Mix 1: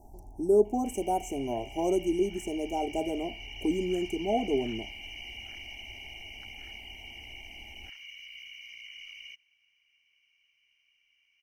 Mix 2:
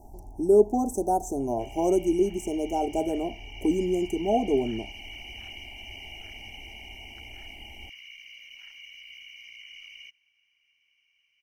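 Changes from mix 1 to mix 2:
speech +4.0 dB; background: entry +0.75 s

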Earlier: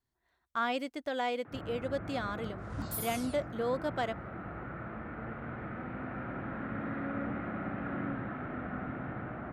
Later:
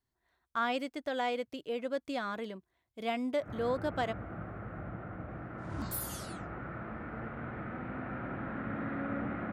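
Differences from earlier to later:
first sound: entry +1.95 s; second sound: entry +3.00 s

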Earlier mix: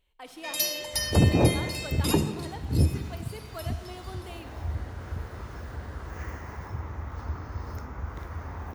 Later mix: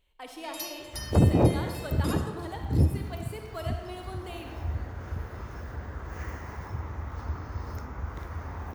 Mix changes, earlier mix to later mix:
speech: send +7.0 dB; first sound -10.5 dB

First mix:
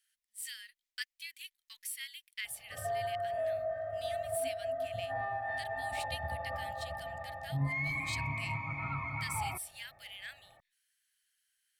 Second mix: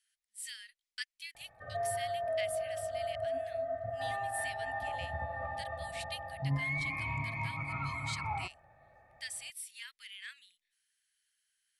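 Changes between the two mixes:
speech: add elliptic low-pass 11000 Hz, stop band 50 dB; background: entry -1.10 s

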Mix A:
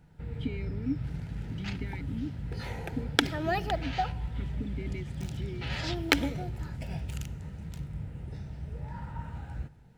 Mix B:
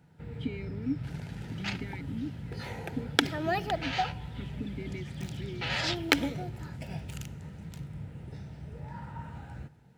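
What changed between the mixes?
second sound +6.0 dB; master: add HPF 100 Hz 12 dB/oct

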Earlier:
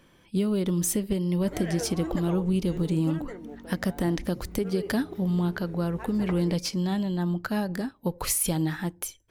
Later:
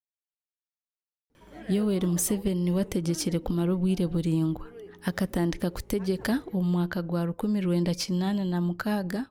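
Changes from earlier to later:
speech: entry +1.35 s; background -8.0 dB

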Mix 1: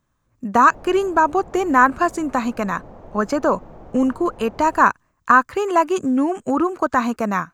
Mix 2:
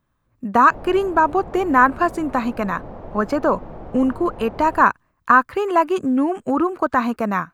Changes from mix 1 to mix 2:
background +5.5 dB; master: add bell 6700 Hz -10 dB 0.69 oct

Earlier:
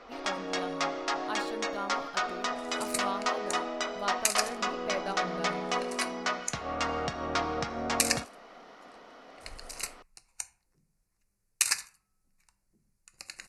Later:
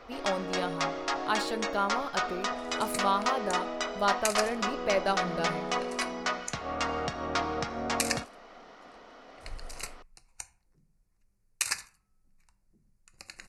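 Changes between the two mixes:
speech +8.0 dB; second sound: add tilt -1.5 dB/oct

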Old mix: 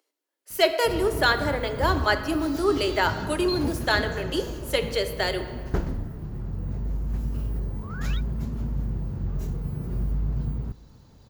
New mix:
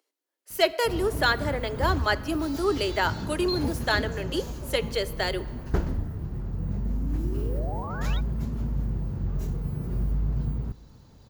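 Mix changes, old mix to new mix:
speech: send -9.5 dB; second sound: remove steep high-pass 1300 Hz

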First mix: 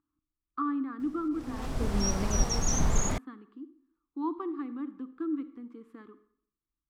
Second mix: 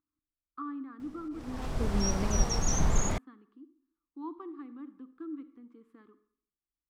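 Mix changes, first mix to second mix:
speech -8.0 dB; background: add high shelf 6700 Hz -4 dB

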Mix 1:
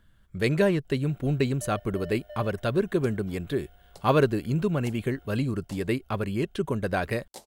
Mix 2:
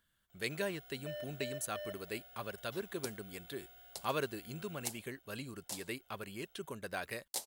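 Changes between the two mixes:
speech -12.0 dB; first sound: entry -0.55 s; master: add tilt +3 dB/oct

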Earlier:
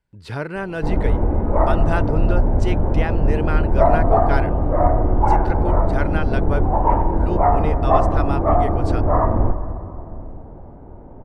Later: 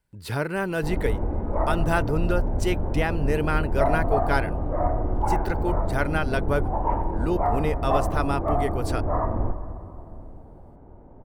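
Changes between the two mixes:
background -8.0 dB; master: remove air absorption 74 m

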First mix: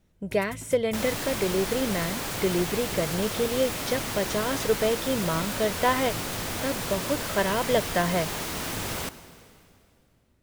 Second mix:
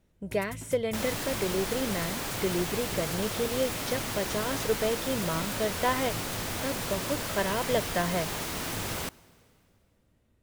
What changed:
speech -4.0 dB; second sound: send -10.5 dB

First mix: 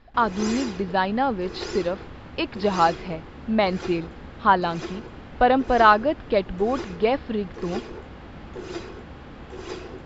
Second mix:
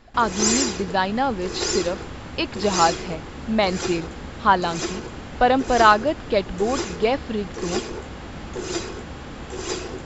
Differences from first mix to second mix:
background +5.0 dB; master: remove air absorption 170 m

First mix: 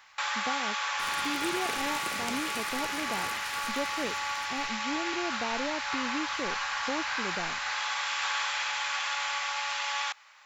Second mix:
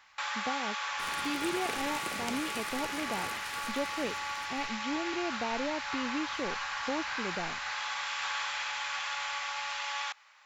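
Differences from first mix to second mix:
first sound -3.5 dB; master: add high shelf 8100 Hz -4.5 dB

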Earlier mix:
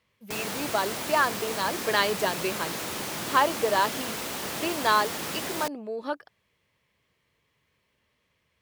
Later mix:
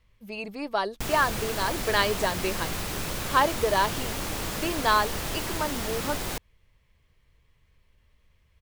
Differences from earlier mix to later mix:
background: entry +0.70 s; master: remove HPF 180 Hz 12 dB/oct

